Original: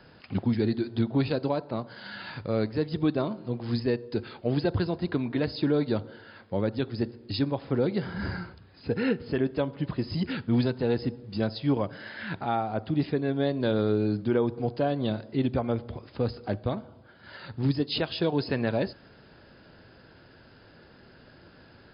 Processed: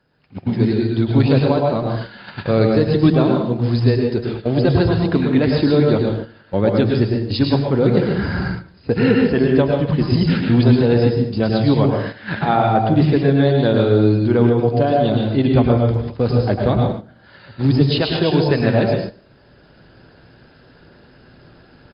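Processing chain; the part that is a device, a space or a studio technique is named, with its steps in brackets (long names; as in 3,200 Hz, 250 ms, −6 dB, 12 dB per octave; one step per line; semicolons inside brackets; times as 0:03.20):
speakerphone in a meeting room (convolution reverb RT60 0.60 s, pre-delay 99 ms, DRR 1 dB; far-end echo of a speakerphone 160 ms, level −28 dB; automatic gain control gain up to 15 dB; noise gate −23 dBFS, range −10 dB; level −1 dB; Opus 32 kbit/s 48,000 Hz)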